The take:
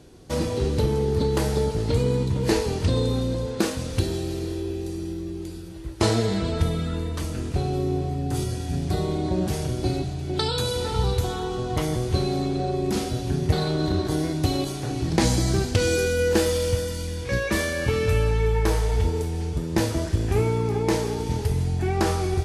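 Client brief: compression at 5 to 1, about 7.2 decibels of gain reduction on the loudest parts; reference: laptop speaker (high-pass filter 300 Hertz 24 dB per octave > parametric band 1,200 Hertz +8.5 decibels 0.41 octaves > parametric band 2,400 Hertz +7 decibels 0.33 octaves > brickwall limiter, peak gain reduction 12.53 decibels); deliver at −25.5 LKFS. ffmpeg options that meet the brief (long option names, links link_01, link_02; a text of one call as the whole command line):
ffmpeg -i in.wav -af "acompressor=threshold=-24dB:ratio=5,highpass=frequency=300:width=0.5412,highpass=frequency=300:width=1.3066,equalizer=frequency=1200:width_type=o:width=0.41:gain=8.5,equalizer=frequency=2400:width_type=o:width=0.33:gain=7,volume=8dB,alimiter=limit=-16.5dB:level=0:latency=1" out.wav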